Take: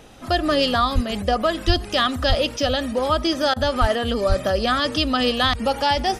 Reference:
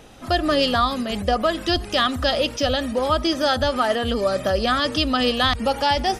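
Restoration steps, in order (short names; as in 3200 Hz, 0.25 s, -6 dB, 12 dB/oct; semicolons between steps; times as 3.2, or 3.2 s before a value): de-plosive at 0.94/1.66/2.28/3.8/4.28; interpolate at 3.54, 22 ms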